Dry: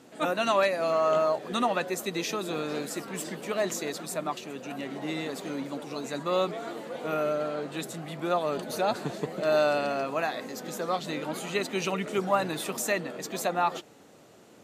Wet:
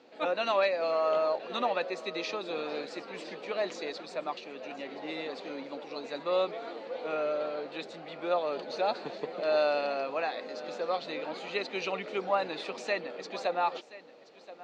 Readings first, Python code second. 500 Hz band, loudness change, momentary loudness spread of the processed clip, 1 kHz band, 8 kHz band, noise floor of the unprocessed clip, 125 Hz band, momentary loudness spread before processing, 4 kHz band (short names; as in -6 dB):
-2.0 dB, -3.0 dB, 13 LU, -3.0 dB, under -15 dB, -54 dBFS, -14.5 dB, 11 LU, -2.5 dB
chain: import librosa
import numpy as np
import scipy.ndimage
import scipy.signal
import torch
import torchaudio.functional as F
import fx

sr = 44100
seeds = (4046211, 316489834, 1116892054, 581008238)

p1 = fx.cabinet(x, sr, low_hz=280.0, low_slope=12, high_hz=5000.0, hz=(510.0, 820.0, 2400.0, 4300.0), db=(7, 4, 5, 6))
p2 = p1 + fx.echo_single(p1, sr, ms=1027, db=-17.5, dry=0)
y = F.gain(torch.from_numpy(p2), -5.5).numpy()